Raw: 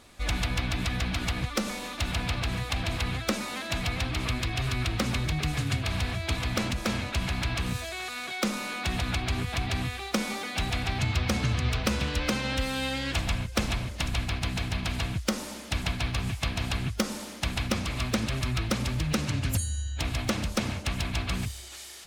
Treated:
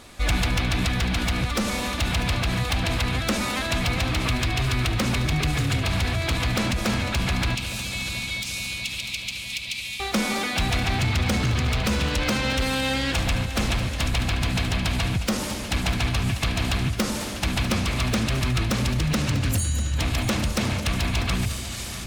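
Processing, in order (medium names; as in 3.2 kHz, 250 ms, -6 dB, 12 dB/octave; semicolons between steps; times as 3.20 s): hard clipper -24 dBFS, distortion -14 dB; 7.55–10.00 s: elliptic high-pass 2.3 kHz, stop band 40 dB; multi-head delay 215 ms, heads first and third, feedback 68%, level -16.5 dB; peak limiter -24.5 dBFS, peak gain reduction 6 dB; trim +8 dB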